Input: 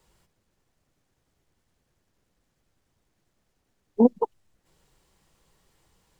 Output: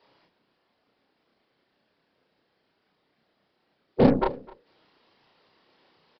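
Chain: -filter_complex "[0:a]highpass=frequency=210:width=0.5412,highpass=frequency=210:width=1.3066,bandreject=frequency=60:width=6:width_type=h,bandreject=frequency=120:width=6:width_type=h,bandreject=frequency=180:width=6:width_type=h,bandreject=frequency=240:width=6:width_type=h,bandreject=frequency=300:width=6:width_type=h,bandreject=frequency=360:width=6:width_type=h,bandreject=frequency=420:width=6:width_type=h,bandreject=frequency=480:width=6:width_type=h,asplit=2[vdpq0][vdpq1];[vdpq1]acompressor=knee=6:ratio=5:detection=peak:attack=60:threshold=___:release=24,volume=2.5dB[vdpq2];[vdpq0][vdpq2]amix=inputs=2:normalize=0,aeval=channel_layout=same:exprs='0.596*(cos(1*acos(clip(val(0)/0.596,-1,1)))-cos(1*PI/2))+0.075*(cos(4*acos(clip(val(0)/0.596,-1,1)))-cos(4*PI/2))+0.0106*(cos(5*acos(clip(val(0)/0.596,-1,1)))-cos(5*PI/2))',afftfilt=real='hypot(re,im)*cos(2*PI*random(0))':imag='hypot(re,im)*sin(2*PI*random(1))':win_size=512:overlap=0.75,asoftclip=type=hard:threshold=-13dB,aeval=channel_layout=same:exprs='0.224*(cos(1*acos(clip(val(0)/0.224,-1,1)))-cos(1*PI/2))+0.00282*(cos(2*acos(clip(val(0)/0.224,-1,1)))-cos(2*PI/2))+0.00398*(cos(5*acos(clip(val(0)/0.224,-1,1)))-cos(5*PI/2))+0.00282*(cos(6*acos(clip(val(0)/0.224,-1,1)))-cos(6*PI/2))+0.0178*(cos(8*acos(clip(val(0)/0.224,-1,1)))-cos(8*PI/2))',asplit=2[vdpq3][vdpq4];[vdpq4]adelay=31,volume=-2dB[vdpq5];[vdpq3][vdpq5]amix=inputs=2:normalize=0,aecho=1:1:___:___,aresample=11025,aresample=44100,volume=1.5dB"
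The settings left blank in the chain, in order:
-34dB, 256, 0.075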